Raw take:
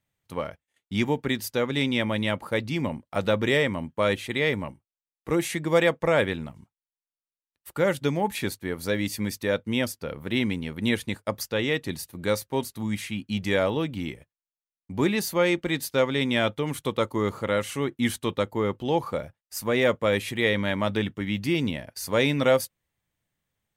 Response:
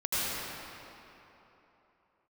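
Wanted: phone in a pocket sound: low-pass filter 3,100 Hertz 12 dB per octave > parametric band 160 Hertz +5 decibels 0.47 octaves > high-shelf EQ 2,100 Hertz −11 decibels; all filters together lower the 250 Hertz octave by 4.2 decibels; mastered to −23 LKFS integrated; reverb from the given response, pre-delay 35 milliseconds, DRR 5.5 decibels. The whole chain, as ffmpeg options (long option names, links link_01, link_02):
-filter_complex "[0:a]equalizer=frequency=250:width_type=o:gain=-7,asplit=2[link_01][link_02];[1:a]atrim=start_sample=2205,adelay=35[link_03];[link_02][link_03]afir=irnorm=-1:irlink=0,volume=-16dB[link_04];[link_01][link_04]amix=inputs=2:normalize=0,lowpass=3100,equalizer=frequency=160:width_type=o:width=0.47:gain=5,highshelf=frequency=2100:gain=-11,volume=6dB"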